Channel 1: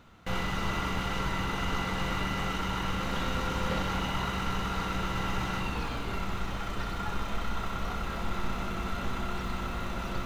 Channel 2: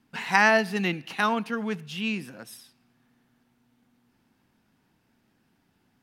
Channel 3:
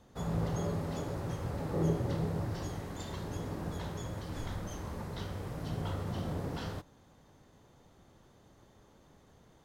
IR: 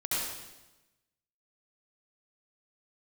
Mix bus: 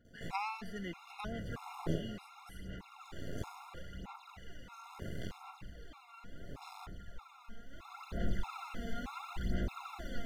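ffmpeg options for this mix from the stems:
-filter_complex "[0:a]aphaser=in_gain=1:out_gain=1:delay=4.4:decay=0.68:speed=0.73:type=sinusoidal,volume=0.376,afade=t=in:st=7.68:d=0.65:silence=0.251189[s0];[1:a]volume=0.178[s1];[2:a]aeval=exprs='max(val(0),0)':c=same,aeval=exprs='val(0)*pow(10,-31*(0.5-0.5*cos(2*PI*0.59*n/s))/20)':c=same,adelay=50,volume=1.33[s2];[s0][s1][s2]amix=inputs=3:normalize=0,afftfilt=real='re*gt(sin(2*PI*1.6*pts/sr)*(1-2*mod(floor(b*sr/1024/700),2)),0)':imag='im*gt(sin(2*PI*1.6*pts/sr)*(1-2*mod(floor(b*sr/1024/700),2)),0)':win_size=1024:overlap=0.75"

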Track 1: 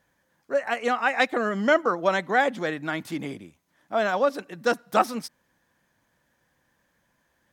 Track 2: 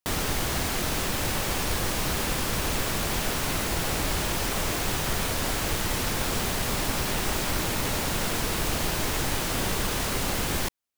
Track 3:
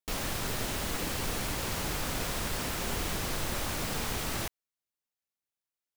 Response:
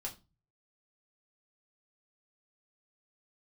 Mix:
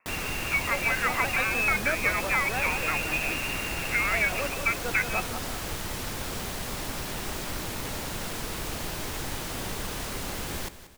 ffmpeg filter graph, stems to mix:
-filter_complex "[0:a]volume=1.06,asplit=2[s0][s1];[s1]volume=0.224[s2];[1:a]volume=0.473,asplit=2[s3][s4];[s4]volume=0.188[s5];[2:a]acompressor=mode=upward:threshold=0.00708:ratio=2.5,volume=0.841,asplit=3[s6][s7][s8];[s6]atrim=end=1.45,asetpts=PTS-STARTPTS,afade=t=out:st=1.446:d=0.004:c=hsin[s9];[s7]atrim=start=1.45:end=2.54,asetpts=PTS-STARTPTS,volume=0[s10];[s8]atrim=start=2.54,asetpts=PTS-STARTPTS,afade=t=in:d=0.004:c=hsin[s11];[s9][s10][s11]concat=n=3:v=0:a=1[s12];[s0][s12]amix=inputs=2:normalize=0,lowpass=f=2400:t=q:w=0.5098,lowpass=f=2400:t=q:w=0.6013,lowpass=f=2400:t=q:w=0.9,lowpass=f=2400:t=q:w=2.563,afreqshift=-2800,acompressor=threshold=0.0708:ratio=6,volume=1[s13];[s2][s5]amix=inputs=2:normalize=0,aecho=0:1:183|366|549|732|915|1098:1|0.45|0.202|0.0911|0.041|0.0185[s14];[s3][s13][s14]amix=inputs=3:normalize=0"

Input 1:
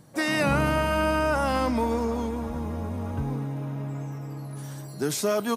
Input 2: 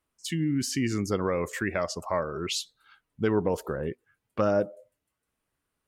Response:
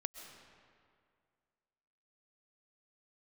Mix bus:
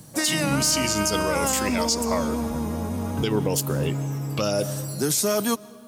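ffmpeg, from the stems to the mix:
-filter_complex "[0:a]bass=f=250:g=4,treble=f=4000:g=11,acrossover=split=130[s0][s1];[s0]acompressor=threshold=0.0112:ratio=6[s2];[s2][s1]amix=inputs=2:normalize=0,volume=1.26,asplit=2[s3][s4];[s4]volume=0.224[s5];[1:a]aexciter=amount=4:drive=10:freq=2600,acontrast=35,volume=0.668,asplit=3[s6][s7][s8];[s6]atrim=end=2.34,asetpts=PTS-STARTPTS,afade=t=out:st=2.336:d=0.004:c=hsin[s9];[s7]atrim=start=2.34:end=3.19,asetpts=PTS-STARTPTS,volume=0[s10];[s8]atrim=start=3.19,asetpts=PTS-STARTPTS,afade=t=in:d=0.004:c=hsin[s11];[s9][s10][s11]concat=n=3:v=0:a=1,asplit=2[s12][s13];[s13]volume=0.376[s14];[2:a]atrim=start_sample=2205[s15];[s5][s14]amix=inputs=2:normalize=0[s16];[s16][s15]afir=irnorm=-1:irlink=0[s17];[s3][s12][s17]amix=inputs=3:normalize=0,alimiter=limit=0.224:level=0:latency=1:release=153"

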